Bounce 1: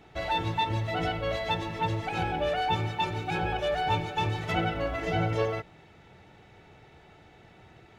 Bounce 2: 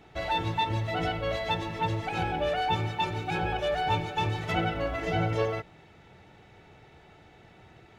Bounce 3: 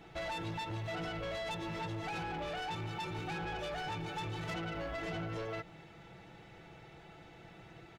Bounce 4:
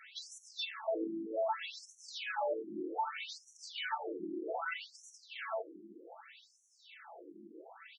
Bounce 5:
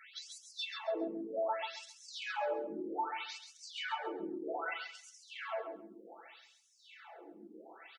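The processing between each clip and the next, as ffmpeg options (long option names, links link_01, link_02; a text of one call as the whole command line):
ffmpeg -i in.wav -af anull out.wav
ffmpeg -i in.wav -af "aecho=1:1:6:0.49,acompressor=threshold=-31dB:ratio=6,asoftclip=type=tanh:threshold=-34dB,volume=-1dB" out.wav
ffmpeg -i in.wav -af "afftfilt=real='re*between(b*sr/1024,270*pow(8000/270,0.5+0.5*sin(2*PI*0.64*pts/sr))/1.41,270*pow(8000/270,0.5+0.5*sin(2*PI*0.64*pts/sr))*1.41)':imag='im*between(b*sr/1024,270*pow(8000/270,0.5+0.5*sin(2*PI*0.64*pts/sr))/1.41,270*pow(8000/270,0.5+0.5*sin(2*PI*0.64*pts/sr))*1.41)':win_size=1024:overlap=0.75,volume=9dB" out.wav
ffmpeg -i in.wav -af "aecho=1:1:135|270|405:0.447|0.0849|0.0161,volume=-1dB" out.wav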